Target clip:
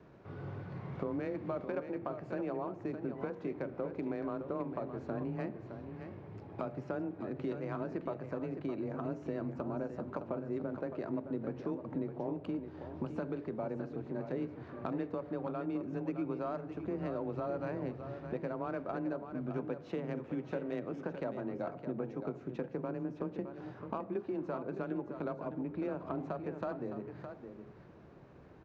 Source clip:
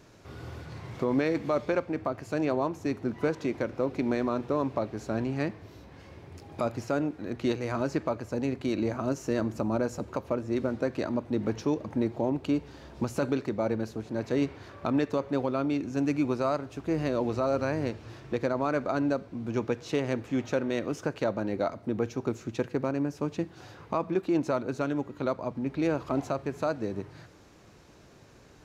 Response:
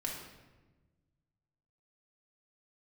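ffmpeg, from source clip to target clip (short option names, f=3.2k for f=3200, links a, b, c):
-filter_complex "[0:a]afreqshift=20,acompressor=threshold=-35dB:ratio=3,bandreject=f=59.43:t=h:w=4,bandreject=f=118.86:t=h:w=4,bandreject=f=178.29:t=h:w=4,bandreject=f=237.72:t=h:w=4,bandreject=f=297.15:t=h:w=4,bandreject=f=356.58:t=h:w=4,bandreject=f=416.01:t=h:w=4,bandreject=f=475.44:t=h:w=4,bandreject=f=534.87:t=h:w=4,bandreject=f=594.3:t=h:w=4,bandreject=f=653.73:t=h:w=4,bandreject=f=713.16:t=h:w=4,bandreject=f=772.59:t=h:w=4,bandreject=f=832.02:t=h:w=4,bandreject=f=891.45:t=h:w=4,adynamicsmooth=sensitivity=1.5:basefreq=1.8k,aecho=1:1:614:0.355,asplit=2[a][b];[1:a]atrim=start_sample=2205,asetrate=33075,aresample=44100[c];[b][c]afir=irnorm=-1:irlink=0,volume=-19.5dB[d];[a][d]amix=inputs=2:normalize=0,volume=-1.5dB"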